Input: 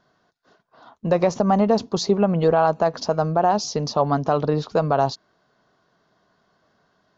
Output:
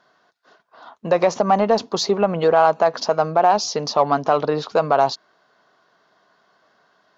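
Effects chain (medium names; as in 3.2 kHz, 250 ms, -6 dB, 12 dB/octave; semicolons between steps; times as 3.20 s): high-pass 740 Hz 6 dB/octave; treble shelf 5.7 kHz -8.5 dB; in parallel at -9.5 dB: saturation -23 dBFS, distortion -9 dB; on the sum: trim +5.5 dB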